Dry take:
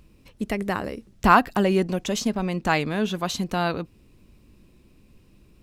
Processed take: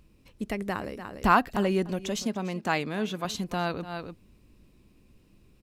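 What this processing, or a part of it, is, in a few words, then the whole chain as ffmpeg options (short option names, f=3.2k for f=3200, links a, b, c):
ducked delay: -filter_complex "[0:a]asettb=1/sr,asplit=3[a][b][c];[a]atrim=end=2.244[d];[b]atrim=start=2.24:end=3.25,asetpts=PTS-STARTPTS,afade=t=in:d=0.004:c=qsin,afade=t=out:st=1.006:d=0.004:c=qsin,highpass=140[e];[c]atrim=start=3.246[f];[d][e]acrossfade=d=0.004:c1=hsin:c2=qsin[g];[g][f]acrossfade=d=0.004:c1=qsin:c2=hsin,asplit=3[h][i][j];[i]adelay=293,volume=-6dB[k];[j]apad=whole_len=260919[l];[k][l]sidechaincompress=threshold=-40dB:ratio=5:attack=16:release=114[m];[h][m]amix=inputs=2:normalize=0,volume=-5dB"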